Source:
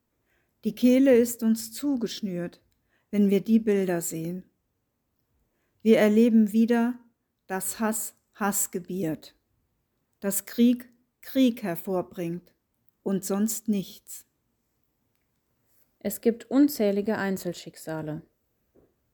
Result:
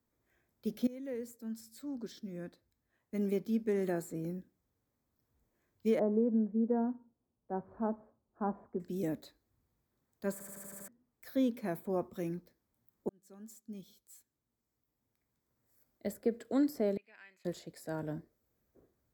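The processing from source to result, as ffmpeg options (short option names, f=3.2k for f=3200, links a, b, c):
-filter_complex "[0:a]asettb=1/sr,asplit=3[a][b][c];[a]atrim=end=5.994[d];[b]atrim=start=5.99:end=8.8,asetpts=PTS-STARTPTS,afade=t=in:d=0.004:c=qsin,afade=t=out:st=2.806:d=0.004:c=qsin,lowpass=f=1k:w=0.5412,lowpass=f=1k:w=1.3066[e];[c]atrim=start=8.796[f];[d][e]acrossfade=d=0.004:c1=hsin:c2=qsin[g];[g][f]acrossfade=d=0.004:c1=qsin:c2=hsin,asettb=1/sr,asplit=3[h][i][j];[h]atrim=end=16.974[k];[i]atrim=start=16.97:end=17.45,asetpts=PTS-STARTPTS,afade=t=in:d=0.004:c=qsin,afade=t=out:st=0.476:d=0.004:c=qsin,bandpass=f=2.5k:t=q:w=8.8[l];[j]atrim=start=17.446[m];[k][l]acrossfade=d=0.004:c1=hsin:c2=qsin[n];[n][m]acrossfade=d=0.004:c1=qsin:c2=hsin,asplit=10[o][p][q][r][s][t][u][v][w][x];[o]atrim=end=0.87,asetpts=PTS-STARTPTS,afade=t=out:st=0.866:d=0.004:c=hsin:silence=0.0944061[y];[p]atrim=start=0.87:end=10.402,asetpts=PTS-STARTPTS,afade=t=in:d=3.48:silence=0.0944061[z];[q]atrim=start=10.318:end=10.402[aa];[r]atrim=start=10.318:end=10.402[ab];[s]atrim=start=10.318:end=10.402[ac];[t]atrim=start=10.318:end=10.402[ad];[u]atrim=start=10.318:end=10.402[ae];[v]atrim=start=10.318:end=10.402[af];[w]atrim=start=10.878:end=13.09,asetpts=PTS-STARTPTS,afade=t=out:st=2.208:d=0.004:c=hsin[ag];[x]atrim=start=13.09,asetpts=PTS-STARTPTS,afade=t=in:d=3.32[ah];[y][z]concat=n=2:v=0:a=1[ai];[ai][aa]acrossfade=d=0.004:c1=hsin:c2=hsin[aj];[aj][ab]acrossfade=d=0.004:c1=hsin:c2=hsin[ak];[ak][ac]acrossfade=d=0.004:c1=hsin:c2=hsin[al];[al][ad]acrossfade=d=0.004:c1=hsin:c2=hsin[am];[am][ae]acrossfade=d=0.004:c1=hsin:c2=hsin[an];[an][af]acrossfade=d=0.004:c1=hsin:c2=hsin[ao];[ag][ah]concat=n=2:v=0:a=1[ap];[ao][ap]acrossfade=d=0.004:c1=hsin:c2=hsin,equalizer=f=2.8k:w=6.3:g=-9.5,acrossover=split=250|1600[aq][ar][as];[aq]acompressor=threshold=-34dB:ratio=4[at];[ar]acompressor=threshold=-22dB:ratio=4[au];[as]acompressor=threshold=-46dB:ratio=4[av];[at][au][av]amix=inputs=3:normalize=0,volume=-5.5dB"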